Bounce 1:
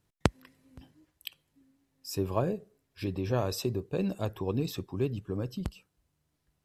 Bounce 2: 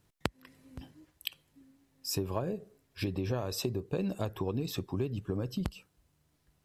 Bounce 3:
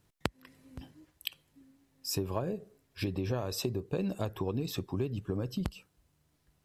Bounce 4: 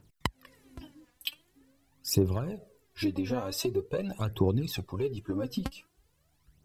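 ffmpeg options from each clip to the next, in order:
-af "acompressor=threshold=0.02:ratio=8,volume=1.78"
-af anull
-af "aphaser=in_gain=1:out_gain=1:delay=4.2:decay=0.69:speed=0.45:type=triangular"

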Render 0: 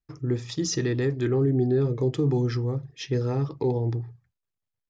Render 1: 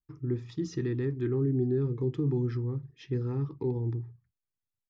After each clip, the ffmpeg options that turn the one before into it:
-af "firequalizer=gain_entry='entry(370,0);entry(600,-17);entry(940,-4);entry(6000,-16)':delay=0.05:min_phase=1,volume=0.596"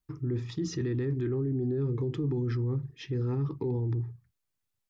-af "alimiter=level_in=2.11:limit=0.0631:level=0:latency=1:release=20,volume=0.473,volume=2.11"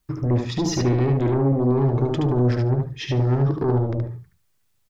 -filter_complex "[0:a]aeval=exprs='0.0631*sin(PI/2*1.41*val(0)/0.0631)':c=same,asplit=2[s0][s1];[s1]aecho=0:1:73|146|219:0.631|0.0946|0.0142[s2];[s0][s2]amix=inputs=2:normalize=0,volume=1.88"

